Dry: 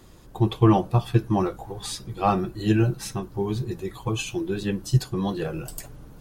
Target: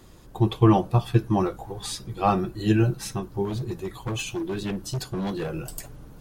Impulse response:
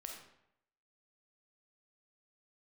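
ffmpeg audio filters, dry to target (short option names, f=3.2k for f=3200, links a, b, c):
-filter_complex "[0:a]asettb=1/sr,asplit=3[a][b][c];[a]atrim=end=3.454[d];[b]atrim=start=3.45:end=5.5,asetpts=PTS-STARTPTS,afade=t=in:d=0.004:c=qsin,afade=t=out:st=2.046:d=0.004:c=qsin,volume=25dB,asoftclip=hard,volume=-25dB[e];[c]atrim=start=5.496[f];[d][e]acrossfade=d=0.004:c1=hsin:c2=qsin[g];[g][f]acrossfade=d=0.004:c1=qsin:c2=hsin"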